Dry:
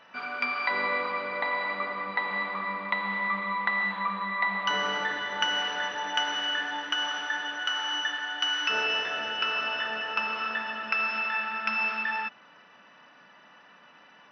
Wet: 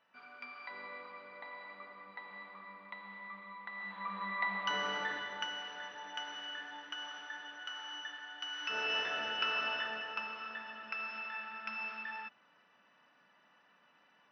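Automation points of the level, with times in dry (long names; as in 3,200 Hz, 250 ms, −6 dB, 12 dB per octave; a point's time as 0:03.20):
0:03.68 −19 dB
0:04.24 −7.5 dB
0:05.16 −7.5 dB
0:05.58 −14.5 dB
0:08.49 −14.5 dB
0:08.99 −5.5 dB
0:09.71 −5.5 dB
0:10.39 −13 dB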